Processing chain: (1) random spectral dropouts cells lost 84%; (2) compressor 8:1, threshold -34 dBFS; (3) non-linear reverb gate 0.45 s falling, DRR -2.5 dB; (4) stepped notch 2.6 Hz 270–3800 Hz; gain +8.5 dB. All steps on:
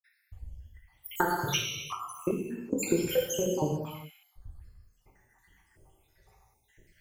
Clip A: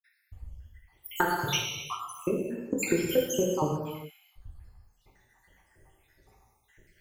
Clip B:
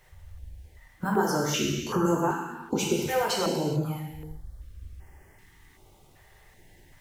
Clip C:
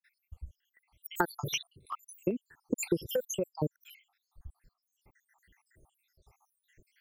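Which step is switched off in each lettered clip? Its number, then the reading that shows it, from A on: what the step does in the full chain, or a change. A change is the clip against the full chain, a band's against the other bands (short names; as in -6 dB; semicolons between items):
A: 4, 2 kHz band +2.0 dB; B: 1, 125 Hz band +3.0 dB; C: 3, momentary loudness spread change -2 LU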